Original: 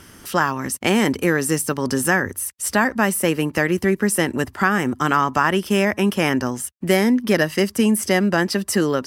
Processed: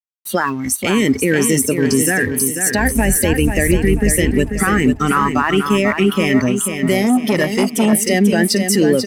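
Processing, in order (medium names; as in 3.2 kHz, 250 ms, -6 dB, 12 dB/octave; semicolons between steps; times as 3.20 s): 2.78–4.34 s: octave divider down 2 oct, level +1 dB; spectral noise reduction 19 dB; peak limiter -14.5 dBFS, peak gain reduction 11 dB; crossover distortion -48.5 dBFS; feedback delay 490 ms, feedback 41%, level -7 dB; 7.02–7.93 s: transformer saturation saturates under 490 Hz; trim +9 dB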